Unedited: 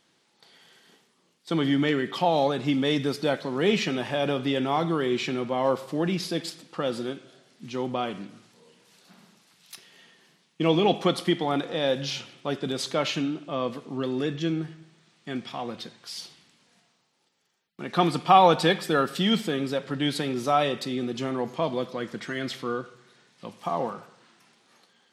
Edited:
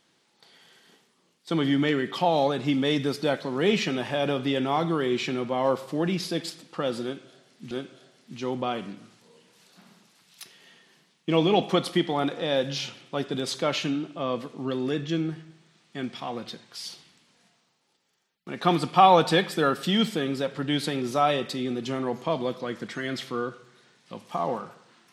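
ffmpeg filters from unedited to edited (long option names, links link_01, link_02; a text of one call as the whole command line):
ffmpeg -i in.wav -filter_complex "[0:a]asplit=2[link_01][link_02];[link_01]atrim=end=7.712[link_03];[link_02]atrim=start=7.028[link_04];[link_03][link_04]acrossfade=duration=0.004:curve1=hsin:curve2=hsin" out.wav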